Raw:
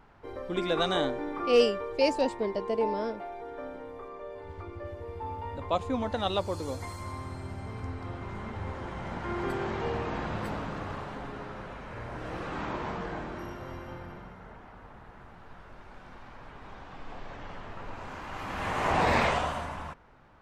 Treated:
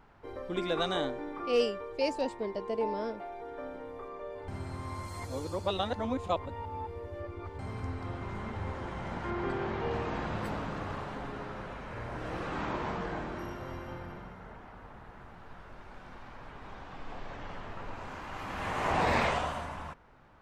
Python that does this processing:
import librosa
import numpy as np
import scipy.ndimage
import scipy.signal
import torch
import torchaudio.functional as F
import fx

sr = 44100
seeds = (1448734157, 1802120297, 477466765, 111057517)

y = fx.air_absorb(x, sr, metres=95.0, at=(9.3, 9.91))
y = fx.edit(y, sr, fx.reverse_span(start_s=4.48, length_s=3.11), tone=tone)
y = fx.rider(y, sr, range_db=3, speed_s=2.0)
y = y * 10.0 ** (-3.0 / 20.0)